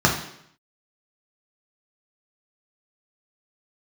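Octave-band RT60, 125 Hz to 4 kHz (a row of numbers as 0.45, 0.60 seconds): 0.70, 0.75, 0.70, 0.70, 0.70, 0.70 seconds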